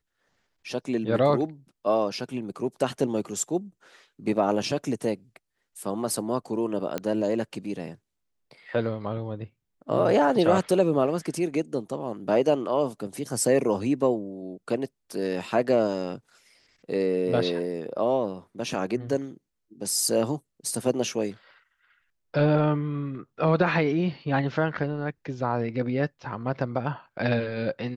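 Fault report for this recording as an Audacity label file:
6.980000	6.980000	click −14 dBFS

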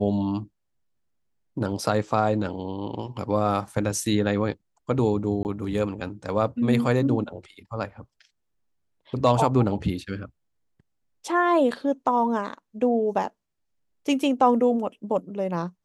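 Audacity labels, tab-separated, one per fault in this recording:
5.430000	5.450000	drop-out 19 ms

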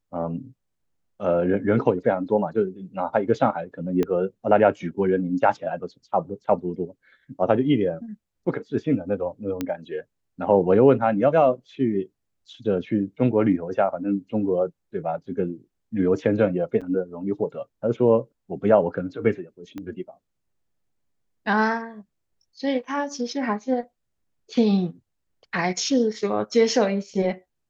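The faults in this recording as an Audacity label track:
4.030000	4.030000	click −13 dBFS
9.610000	9.610000	click −13 dBFS
16.810000	16.820000	drop-out 6.3 ms
19.780000	19.780000	click −22 dBFS

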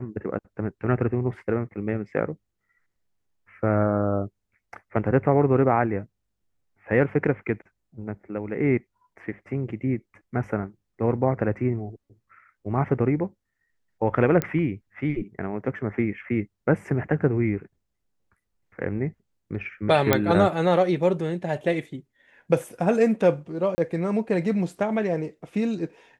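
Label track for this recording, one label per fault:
14.420000	14.420000	click −10 dBFS
20.130000	20.130000	click −3 dBFS
23.750000	23.780000	drop-out 30 ms

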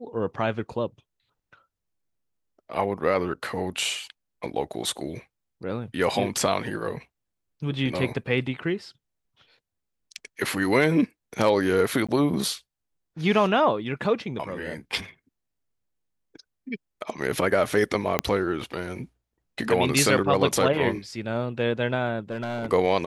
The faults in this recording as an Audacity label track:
12.070000	12.090000	drop-out 16 ms
18.190000	18.190000	click −6 dBFS
22.300000	22.720000	clipping −25 dBFS

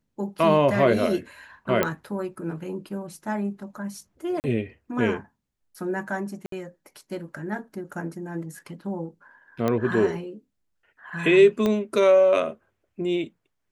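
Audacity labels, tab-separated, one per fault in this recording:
1.830000	1.830000	click −8 dBFS
4.400000	4.440000	drop-out 39 ms
6.460000	6.520000	drop-out 63 ms
9.680000	9.680000	click −12 dBFS
11.660000	11.660000	click −12 dBFS

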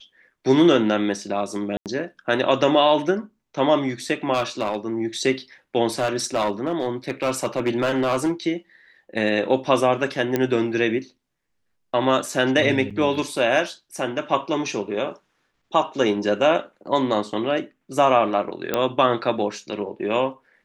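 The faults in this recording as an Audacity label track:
1.770000	1.860000	drop-out 88 ms
4.330000	4.760000	clipping −17 dBFS
5.990000	8.320000	clipping −16.5 dBFS
10.360000	10.360000	click −8 dBFS
12.900000	12.910000	drop-out 5.9 ms
18.740000	18.740000	click −7 dBFS

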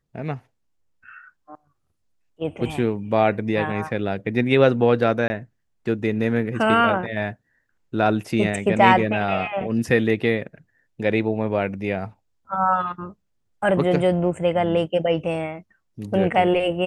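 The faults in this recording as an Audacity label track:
5.280000	5.300000	drop-out 20 ms

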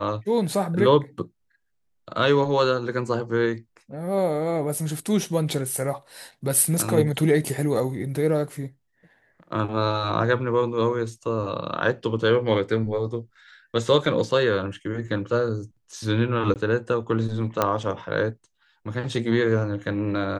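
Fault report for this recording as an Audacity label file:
16.540000	16.560000	drop-out 18 ms
17.620000	17.620000	click −7 dBFS

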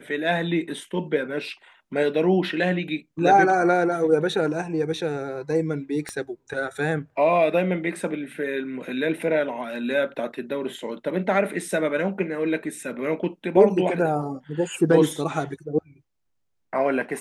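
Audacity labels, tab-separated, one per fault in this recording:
6.090000	6.090000	click −18 dBFS

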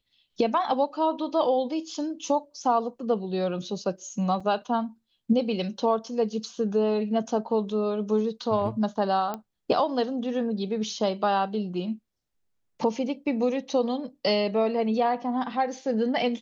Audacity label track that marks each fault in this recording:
4.400000	4.400000	drop-out 4.8 ms
9.340000	9.340000	click −18 dBFS

